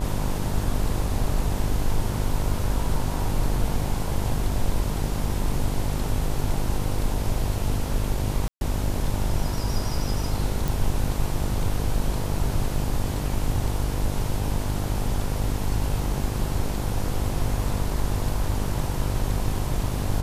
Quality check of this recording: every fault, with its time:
buzz 50 Hz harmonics 21 -28 dBFS
8.48–8.61 gap 0.131 s
10.68 pop

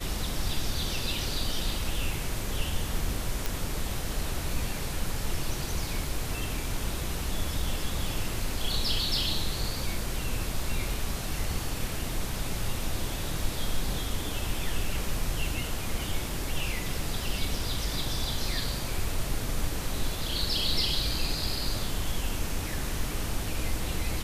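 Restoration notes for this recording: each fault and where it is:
3.46 pop

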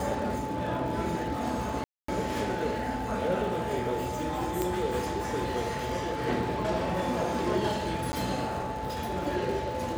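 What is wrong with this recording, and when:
crackle 130/s -38 dBFS
tone 870 Hz -35 dBFS
1.84–2.08 gap 0.244 s
4.62 pop -14 dBFS
8.12–8.13 gap 10 ms

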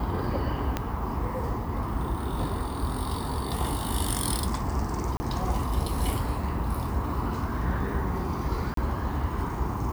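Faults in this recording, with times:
0.77 pop -12 dBFS
5.17–5.2 gap 30 ms
8.74–8.77 gap 33 ms

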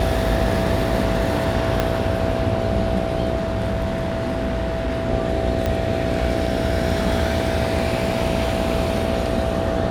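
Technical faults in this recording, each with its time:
buzz 60 Hz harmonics 13 -26 dBFS
tone 660 Hz -27 dBFS
1.8 pop -6 dBFS
3.35–5.08 clipped -18.5 dBFS
5.66 pop -9 dBFS

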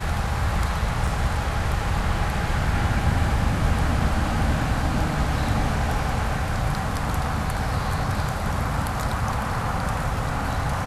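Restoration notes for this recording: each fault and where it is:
1.07 gap 4.7 ms

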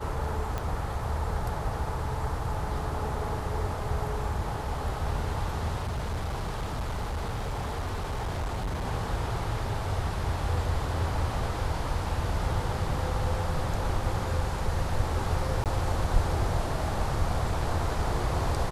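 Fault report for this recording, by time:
0.58 pop -18 dBFS
5.77–8.86 clipped -27.5 dBFS
15.64–15.66 gap 18 ms

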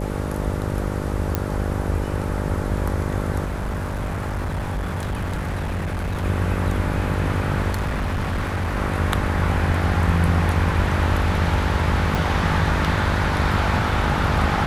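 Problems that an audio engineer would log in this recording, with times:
buzz 50 Hz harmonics 12 -26 dBFS
1.35 pop -7 dBFS
3.44–6.25 clipped -22 dBFS
7.71–8.77 clipped -20 dBFS
12.15 pop

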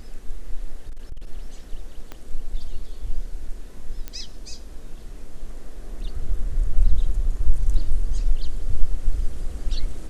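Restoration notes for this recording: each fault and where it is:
0.88–1.3 clipped -26.5 dBFS
2.12 pop -20 dBFS
4.08 pop -16 dBFS

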